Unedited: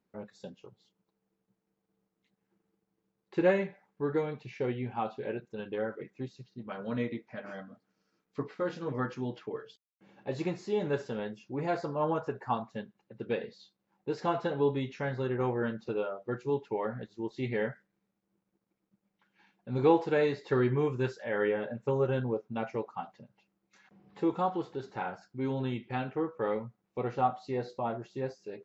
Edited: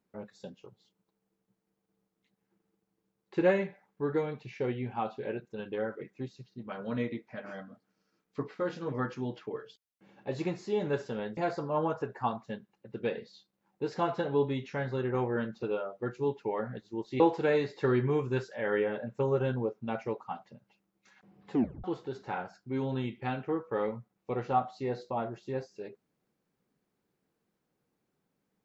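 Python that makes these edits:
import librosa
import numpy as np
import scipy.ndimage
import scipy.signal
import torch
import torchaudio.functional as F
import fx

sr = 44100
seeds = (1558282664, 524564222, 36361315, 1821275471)

y = fx.edit(x, sr, fx.cut(start_s=11.37, length_s=0.26),
    fx.cut(start_s=17.46, length_s=2.42),
    fx.tape_stop(start_s=24.21, length_s=0.31), tone=tone)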